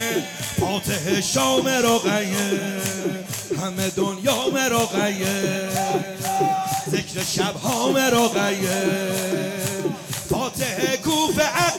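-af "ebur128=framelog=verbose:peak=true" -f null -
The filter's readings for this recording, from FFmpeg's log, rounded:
Integrated loudness:
  I:         -21.8 LUFS
  Threshold: -31.8 LUFS
Loudness range:
  LRA:         1.3 LU
  Threshold: -41.9 LUFS
  LRA low:   -22.6 LUFS
  LRA high:  -21.3 LUFS
True peak:
  Peak:       -9.3 dBFS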